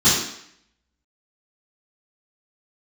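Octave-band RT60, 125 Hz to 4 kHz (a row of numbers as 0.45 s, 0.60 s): 0.55 s, 0.70 s, 0.65 s, 0.70 s, 0.75 s, 0.70 s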